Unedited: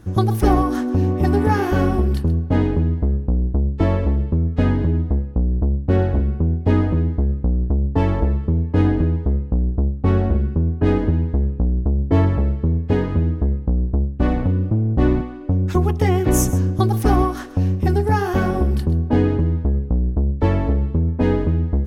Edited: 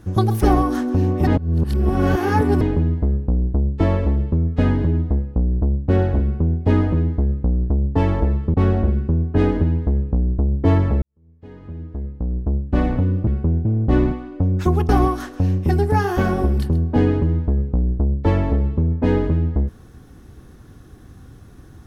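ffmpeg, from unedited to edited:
ffmpeg -i in.wav -filter_complex "[0:a]asplit=8[link_01][link_02][link_03][link_04][link_05][link_06][link_07][link_08];[link_01]atrim=end=1.272[link_09];[link_02]atrim=start=1.268:end=2.612,asetpts=PTS-STARTPTS,areverse[link_10];[link_03]atrim=start=2.608:end=8.542[link_11];[link_04]atrim=start=10.008:end=12.49,asetpts=PTS-STARTPTS,afade=type=out:start_time=2.478:duration=0.004:curve=hsin[link_12];[link_05]atrim=start=12.49:end=14.742,asetpts=PTS-STARTPTS,afade=type=in:duration=1.64:curve=qua[link_13];[link_06]atrim=start=6.228:end=6.612[link_14];[link_07]atrim=start=14.738:end=15.982[link_15];[link_08]atrim=start=17.058[link_16];[link_09][link_10]acrossfade=duration=0.004:curve1=hsin:curve2=hsin[link_17];[link_17][link_11]acrossfade=duration=0.004:curve1=hsin:curve2=hsin[link_18];[link_12][link_13]concat=n=2:v=0:a=1[link_19];[link_18][link_19]acrossfade=duration=0.004:curve1=hsin:curve2=hsin[link_20];[link_20][link_14]acrossfade=duration=0.004:curve1=hsin:curve2=hsin[link_21];[link_21][link_15]acrossfade=duration=0.004:curve1=hsin:curve2=hsin[link_22];[link_22][link_16]acrossfade=duration=0.004:curve1=hsin:curve2=hsin" out.wav

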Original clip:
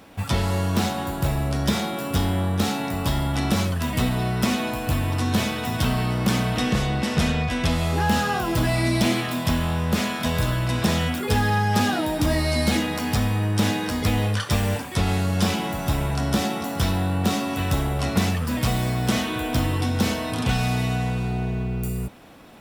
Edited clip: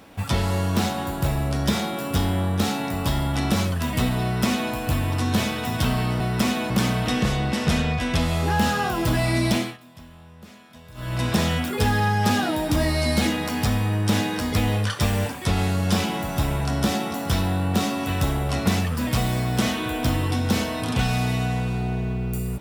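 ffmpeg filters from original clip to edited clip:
ffmpeg -i in.wav -filter_complex "[0:a]asplit=5[link_01][link_02][link_03][link_04][link_05];[link_01]atrim=end=6.202[link_06];[link_02]atrim=start=4.228:end=4.732[link_07];[link_03]atrim=start=6.198:end=9.28,asetpts=PTS-STARTPTS,afade=type=out:start_time=2.802:duration=0.28:silence=0.0749894[link_08];[link_04]atrim=start=9.28:end=10.44,asetpts=PTS-STARTPTS,volume=-22.5dB[link_09];[link_05]atrim=start=10.44,asetpts=PTS-STARTPTS,afade=type=in:duration=0.28:silence=0.0749894[link_10];[link_06][link_07]acrossfade=duration=0.004:curve1=hsin:curve2=hsin[link_11];[link_08][link_09][link_10]concat=n=3:v=0:a=1[link_12];[link_11][link_12]acrossfade=duration=0.004:curve1=hsin:curve2=hsin" out.wav

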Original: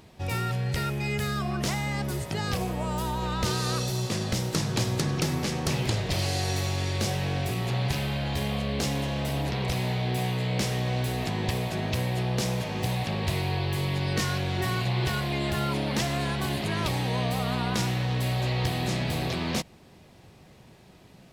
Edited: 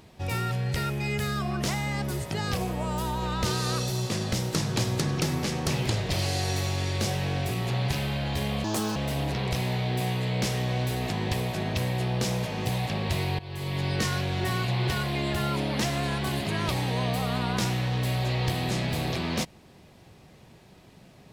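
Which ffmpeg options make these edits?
ffmpeg -i in.wav -filter_complex "[0:a]asplit=4[link_01][link_02][link_03][link_04];[link_01]atrim=end=8.644[link_05];[link_02]atrim=start=8.64:end=9.13,asetpts=PTS-STARTPTS,asetrate=67914,aresample=44100[link_06];[link_03]atrim=start=9.126:end=13.56,asetpts=PTS-STARTPTS,afade=type=out:start_time=4.43:duration=0.004:curve=hsin:silence=0.125893[link_07];[link_04]atrim=start=13.56,asetpts=PTS-STARTPTS,afade=type=in:duration=0.45:silence=0.125893[link_08];[link_05][link_06]acrossfade=duration=0.004:curve1=hsin:curve2=hsin[link_09];[link_07][link_08]concat=n=2:v=0:a=1[link_10];[link_09][link_10]acrossfade=duration=0.004:curve1=hsin:curve2=hsin" out.wav

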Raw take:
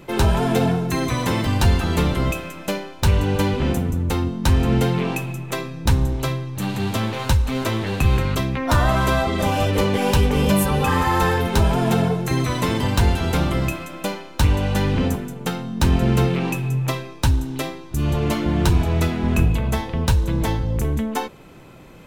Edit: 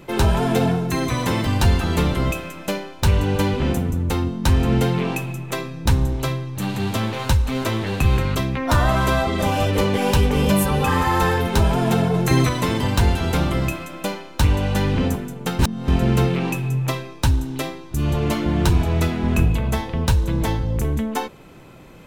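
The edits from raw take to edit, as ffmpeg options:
ffmpeg -i in.wav -filter_complex "[0:a]asplit=5[link_01][link_02][link_03][link_04][link_05];[link_01]atrim=end=12.142[link_06];[link_02]atrim=start=12.138:end=12.492,asetpts=PTS-STARTPTS,volume=4.5dB[link_07];[link_03]atrim=start=12.488:end=15.592[link_08];[link_04]atrim=start=15.588:end=15.882,asetpts=PTS-STARTPTS,areverse[link_09];[link_05]atrim=start=15.878[link_10];[link_06][link_07]acrossfade=duration=0.004:curve1=hsin:curve2=hsin[link_11];[link_11][link_08]acrossfade=duration=0.004:curve1=hsin:curve2=hsin[link_12];[link_12][link_09]acrossfade=duration=0.004:curve1=hsin:curve2=hsin[link_13];[link_13][link_10]acrossfade=duration=0.004:curve1=hsin:curve2=hsin" out.wav

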